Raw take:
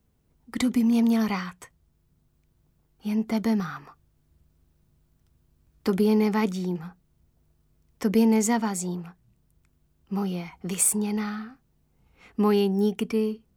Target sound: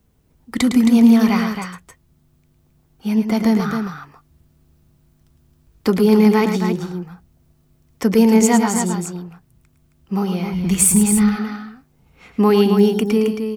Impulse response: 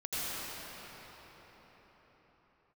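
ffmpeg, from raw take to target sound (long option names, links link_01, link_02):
-filter_complex "[0:a]aecho=1:1:107.9|268.2:0.398|0.447,asplit=3[link_01][link_02][link_03];[link_01]afade=type=out:start_time=10.52:duration=0.02[link_04];[link_02]asubboost=boost=6:cutoff=160,afade=type=in:start_time=10.52:duration=0.02,afade=type=out:start_time=11.35:duration=0.02[link_05];[link_03]afade=type=in:start_time=11.35:duration=0.02[link_06];[link_04][link_05][link_06]amix=inputs=3:normalize=0,volume=7.5dB"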